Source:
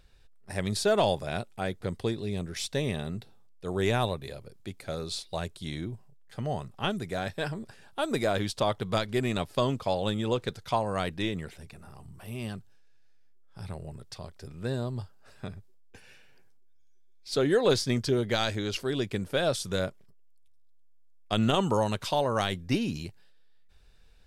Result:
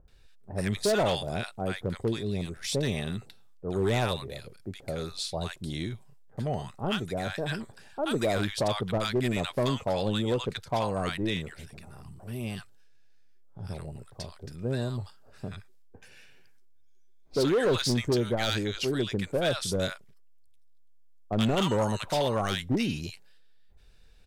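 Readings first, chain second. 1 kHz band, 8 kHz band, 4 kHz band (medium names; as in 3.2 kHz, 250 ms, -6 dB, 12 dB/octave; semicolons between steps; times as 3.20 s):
-1.5 dB, +1.0 dB, +1.0 dB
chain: bands offset in time lows, highs 80 ms, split 1 kHz; overload inside the chain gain 22 dB; trim +1.5 dB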